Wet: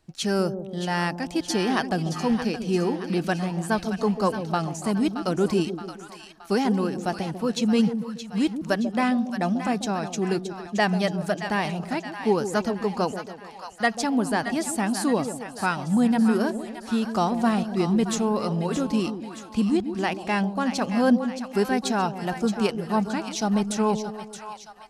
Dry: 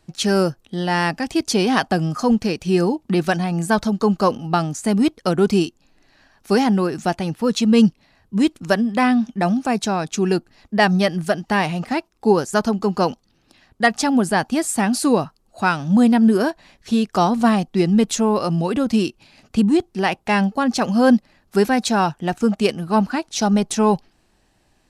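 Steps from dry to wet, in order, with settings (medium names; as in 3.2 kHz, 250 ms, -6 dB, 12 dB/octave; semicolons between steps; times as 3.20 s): two-band feedback delay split 740 Hz, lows 142 ms, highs 622 ms, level -9 dB; trim -6.5 dB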